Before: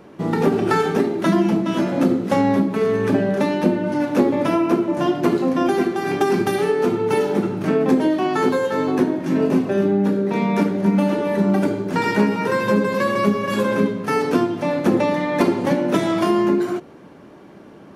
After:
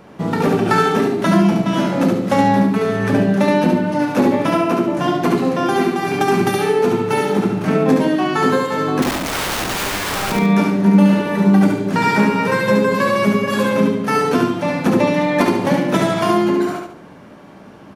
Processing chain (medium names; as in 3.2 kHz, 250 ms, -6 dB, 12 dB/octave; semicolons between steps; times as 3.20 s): peaking EQ 360 Hz -7 dB 0.63 oct; 9.02–10.32 s: integer overflow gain 22 dB; on a send: feedback delay 71 ms, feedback 34%, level -3.5 dB; on the sum: trim +3.5 dB